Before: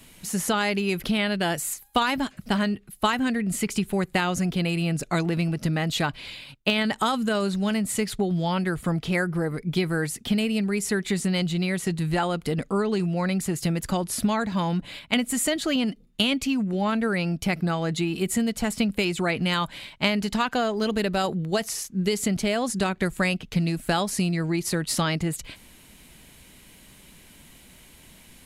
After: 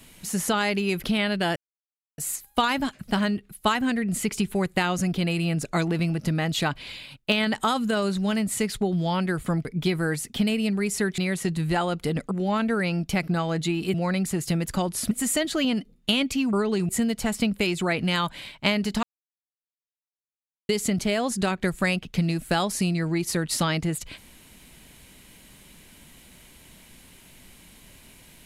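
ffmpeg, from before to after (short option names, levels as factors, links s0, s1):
-filter_complex "[0:a]asplit=11[s0][s1][s2][s3][s4][s5][s6][s7][s8][s9][s10];[s0]atrim=end=1.56,asetpts=PTS-STARTPTS,afade=t=out:st=1.556:d=0.004:c=hsin,apad=pad_dur=0.62[s11];[s1]atrim=start=1.56:end=9.032,asetpts=PTS-STARTPTS,afade=t=in:d=0.004:c=hsin[s12];[s2]atrim=start=9.558:end=11.092[s13];[s3]atrim=start=11.598:end=12.732[s14];[s4]atrim=start=16.638:end=18.272[s15];[s5]atrim=start=13.088:end=14.262[s16];[s6]atrim=start=15.218:end=16.642[s17];[s7]atrim=start=12.728:end=13.092[s18];[s8]atrim=start=18.268:end=20.41,asetpts=PTS-STARTPTS,afade=t=out:st=2.138:d=0.004:c=hsin[s19];[s9]atrim=start=20.41:end=22.07,asetpts=PTS-STARTPTS,volume=0[s20];[s10]atrim=start=22.07,asetpts=PTS-STARTPTS,afade=t=in:d=0.004:c=hsin[s21];[s11][s12]concat=n=2:v=0:a=1[s22];[s22][s13]acrossfade=d=0.004:c1=hsin:c2=hsin[s23];[s23][s14]acrossfade=d=0.004:c1=hsin:c2=hsin[s24];[s24][s15]acrossfade=d=0.004:c1=hsin:c2=hsin[s25];[s25][s16]acrossfade=d=0.004:c1=hsin:c2=hsin[s26];[s26][s17]acrossfade=d=0.004:c1=hsin:c2=hsin[s27];[s27][s18]acrossfade=d=0.004:c1=hsin:c2=hsin[s28];[s19][s20][s21]concat=n=3:v=0:a=1[s29];[s28][s29]acrossfade=d=0.004:c1=hsin:c2=hsin"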